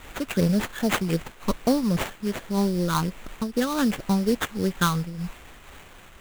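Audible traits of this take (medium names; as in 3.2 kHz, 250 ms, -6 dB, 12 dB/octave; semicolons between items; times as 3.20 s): a quantiser's noise floor 8-bit, dither triangular; phasing stages 12, 2.6 Hz, lowest notch 570–1200 Hz; aliases and images of a low sample rate 5.1 kHz, jitter 20%; random flutter of the level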